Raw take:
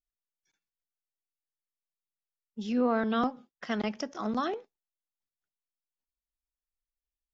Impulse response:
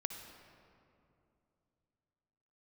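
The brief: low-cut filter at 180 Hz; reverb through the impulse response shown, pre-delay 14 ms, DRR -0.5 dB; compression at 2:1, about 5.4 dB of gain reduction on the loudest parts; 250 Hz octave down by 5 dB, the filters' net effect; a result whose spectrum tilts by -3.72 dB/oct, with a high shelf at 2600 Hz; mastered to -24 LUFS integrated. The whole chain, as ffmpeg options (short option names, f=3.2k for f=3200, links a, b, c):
-filter_complex "[0:a]highpass=180,equalizer=f=250:t=o:g=-4,highshelf=f=2.6k:g=-3.5,acompressor=threshold=-34dB:ratio=2,asplit=2[a][b];[1:a]atrim=start_sample=2205,adelay=14[c];[b][c]afir=irnorm=-1:irlink=0,volume=1dB[d];[a][d]amix=inputs=2:normalize=0,volume=10.5dB"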